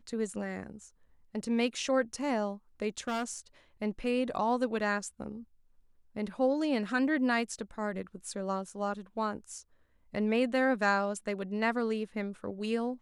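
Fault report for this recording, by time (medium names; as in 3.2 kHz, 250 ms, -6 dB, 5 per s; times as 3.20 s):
2.98–3.38 s: clipped -28.5 dBFS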